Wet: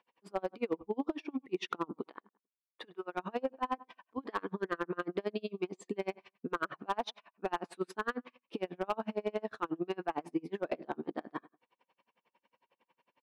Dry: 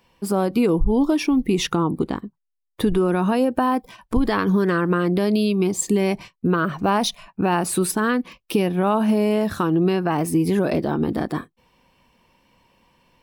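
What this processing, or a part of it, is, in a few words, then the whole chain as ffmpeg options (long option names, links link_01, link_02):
helicopter radio: -filter_complex "[0:a]asettb=1/sr,asplit=3[link_01][link_02][link_03];[link_01]atrim=end=2.034[link_04];[link_02]atrim=start=2.03:end=3.15,asetpts=PTS-STARTPTS,afade=type=in:duration=0.004:curve=qsin,afade=type=out:start_time=1.116:duration=0.004:curve=qsin,highpass=frequency=850:poles=1[link_05];[link_03]atrim=start=3.146[link_06];[link_04][link_05]acrossfade=duration=0.004:curve1=hsin:curve2=qsin[link_07];[link_07][link_06]acrossfade=duration=0.004:curve1=qsin:curve2=hsin,highpass=380,lowpass=2700,asplit=2[link_08][link_09];[link_09]adelay=105,lowpass=frequency=2200:poles=1,volume=-20.5dB,asplit=2[link_10][link_11];[link_11]adelay=105,lowpass=frequency=2200:poles=1,volume=0.22[link_12];[link_08][link_10][link_12]amix=inputs=3:normalize=0,aeval=exprs='val(0)*pow(10,-35*(0.5-0.5*cos(2*PI*11*n/s))/20)':channel_layout=same,asoftclip=type=hard:threshold=-17.5dB,volume=-5.5dB"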